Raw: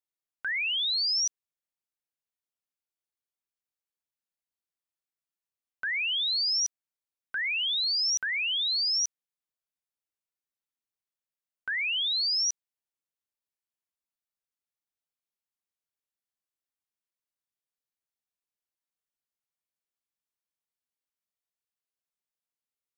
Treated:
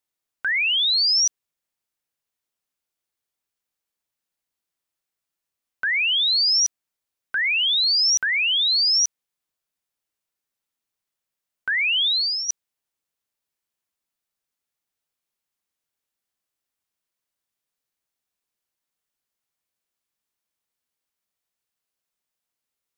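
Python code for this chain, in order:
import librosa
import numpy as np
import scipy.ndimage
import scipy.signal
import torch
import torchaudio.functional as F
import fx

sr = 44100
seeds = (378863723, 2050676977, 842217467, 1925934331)

y = fx.fixed_phaser(x, sr, hz=1900.0, stages=6, at=(12.07, 12.48), fade=0.02)
y = F.gain(torch.from_numpy(y), 8.0).numpy()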